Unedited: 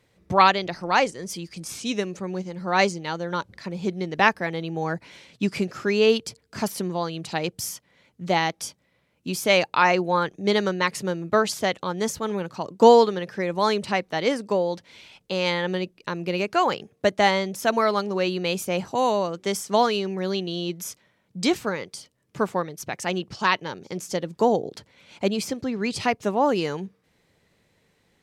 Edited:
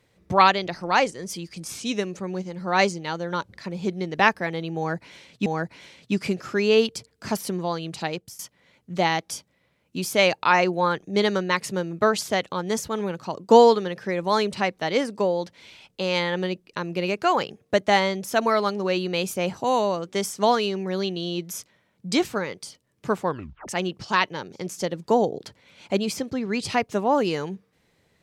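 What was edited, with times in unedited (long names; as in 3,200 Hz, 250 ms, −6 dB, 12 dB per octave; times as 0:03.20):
0:04.77–0:05.46: repeat, 2 plays
0:07.31–0:07.70: fade out, to −20.5 dB
0:22.58: tape stop 0.41 s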